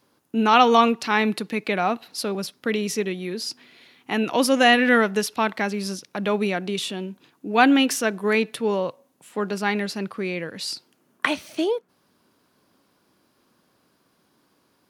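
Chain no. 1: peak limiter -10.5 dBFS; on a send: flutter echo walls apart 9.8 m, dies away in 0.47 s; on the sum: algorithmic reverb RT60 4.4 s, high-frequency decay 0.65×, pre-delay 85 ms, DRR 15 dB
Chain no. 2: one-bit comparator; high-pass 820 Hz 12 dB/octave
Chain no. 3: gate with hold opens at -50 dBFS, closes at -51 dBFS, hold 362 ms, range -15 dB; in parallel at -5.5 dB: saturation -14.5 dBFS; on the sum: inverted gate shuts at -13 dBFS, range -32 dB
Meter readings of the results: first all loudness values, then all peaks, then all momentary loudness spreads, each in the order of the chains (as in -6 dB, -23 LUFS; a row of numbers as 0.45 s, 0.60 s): -23.0 LUFS, -25.0 LUFS, -30.5 LUFS; -7.0 dBFS, -17.0 dBFS, -9.0 dBFS; 13 LU, 4 LU, 20 LU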